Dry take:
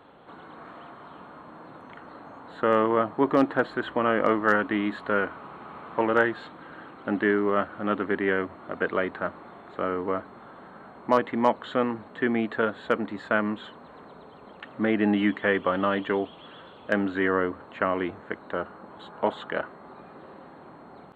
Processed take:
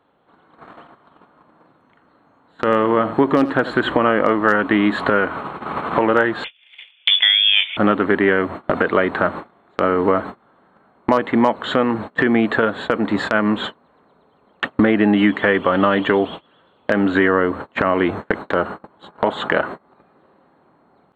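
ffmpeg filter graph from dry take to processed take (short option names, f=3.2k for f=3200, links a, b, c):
-filter_complex "[0:a]asettb=1/sr,asplit=3[a][b][c];[a]atrim=end=1.724[d];[b]atrim=start=1.72:end=3.92,asetpts=PTS-STARTPTS,afade=t=in:d=0.004:c=qsin,afade=t=out:st=2.196:d=0.004:c=qsin,equalizer=f=730:w=0.52:g=-3.5,aecho=1:1:84:0.15,atrim=end_sample=97020[e];[c]atrim=start=3.916[f];[d][e]acrossfade=d=0.004:c1=hsin:c2=qsin[g];[g][f]acrossfade=d=0.004:c1=qsin:c2=hsin,asettb=1/sr,asplit=3[h][i][j];[h]atrim=end=6.444[k];[i]atrim=start=6.44:end=7.77,asetpts=PTS-STARTPTS,afade=t=in:d=0.004:c=qsin,afade=t=out:st=1.326:d=0.004:c=qsin,highshelf=f=2.2k:g=-5.5,lowpass=f=3.1k:t=q:w=0.5098,lowpass=f=3.1k:t=q:w=0.6013,lowpass=f=3.1k:t=q:w=0.9,lowpass=f=3.1k:t=q:w=2.563,afreqshift=-3700[l];[j]atrim=start=7.766[m];[k][l]acrossfade=d=0.004:c1=hsin:c2=qsin[n];[n][m]acrossfade=d=0.004:c1=qsin:c2=hsin,agate=range=-34dB:threshold=-40dB:ratio=16:detection=peak,acompressor=threshold=-39dB:ratio=5,alimiter=level_in=26dB:limit=-1dB:release=50:level=0:latency=1,volume=-1dB"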